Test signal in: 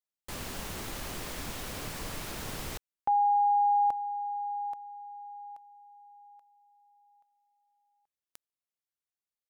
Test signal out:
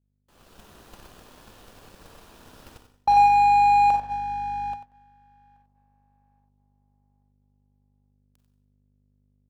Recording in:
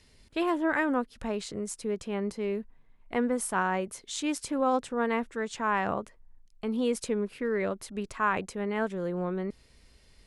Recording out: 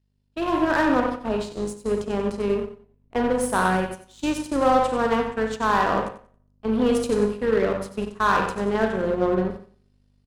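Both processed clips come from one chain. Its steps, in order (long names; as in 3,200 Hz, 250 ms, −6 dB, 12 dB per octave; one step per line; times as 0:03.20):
four-comb reverb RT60 0.73 s, combs from 32 ms, DRR 4 dB
in parallel at −3 dB: wave folding −23.5 dBFS
on the sum: bass and treble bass −4 dB, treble −7 dB
mains hum 50 Hz, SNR 15 dB
noise gate −31 dBFS, range −11 dB
parametric band 2,100 Hz −9.5 dB 0.35 octaves
repeating echo 92 ms, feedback 32%, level −8.5 dB
automatic gain control gain up to 6 dB
power curve on the samples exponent 1.4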